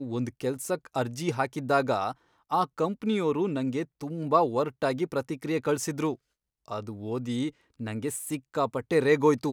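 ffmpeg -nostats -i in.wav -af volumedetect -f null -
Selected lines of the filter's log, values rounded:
mean_volume: -28.6 dB
max_volume: -8.0 dB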